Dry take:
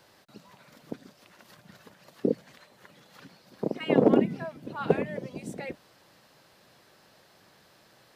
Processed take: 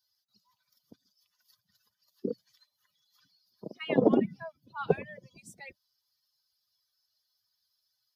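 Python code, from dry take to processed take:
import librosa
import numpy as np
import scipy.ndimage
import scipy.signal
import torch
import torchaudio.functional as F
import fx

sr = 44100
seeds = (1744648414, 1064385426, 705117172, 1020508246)

y = fx.bin_expand(x, sr, power=2.0)
y = fx.transient(y, sr, attack_db=-3, sustain_db=3, at=(2.27, 3.66))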